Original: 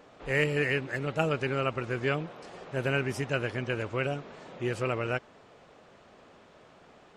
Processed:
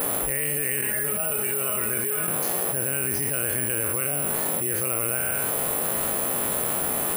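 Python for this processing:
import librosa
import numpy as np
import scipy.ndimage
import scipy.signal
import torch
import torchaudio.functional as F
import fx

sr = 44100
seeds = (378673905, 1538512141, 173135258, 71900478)

y = fx.spec_trails(x, sr, decay_s=0.61)
y = fx.comb_fb(y, sr, f0_hz=210.0, decay_s=0.19, harmonics='all', damping=0.0, mix_pct=90, at=(0.81, 2.28))
y = (np.kron(scipy.signal.resample_poly(y, 1, 4), np.eye(4)[0]) * 4)[:len(y)]
y = fx.env_flatten(y, sr, amount_pct=100)
y = y * librosa.db_to_amplitude(-9.0)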